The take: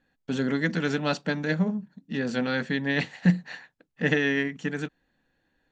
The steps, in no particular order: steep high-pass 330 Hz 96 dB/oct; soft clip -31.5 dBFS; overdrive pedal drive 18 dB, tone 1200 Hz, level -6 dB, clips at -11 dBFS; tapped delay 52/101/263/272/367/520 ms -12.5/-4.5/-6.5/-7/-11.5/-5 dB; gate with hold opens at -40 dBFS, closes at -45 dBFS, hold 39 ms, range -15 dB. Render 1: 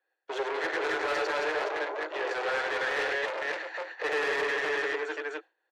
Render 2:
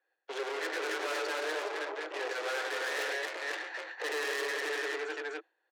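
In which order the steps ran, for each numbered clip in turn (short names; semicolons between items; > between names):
tapped delay > soft clip > steep high-pass > gate with hold > overdrive pedal; gate with hold > overdrive pedal > tapped delay > soft clip > steep high-pass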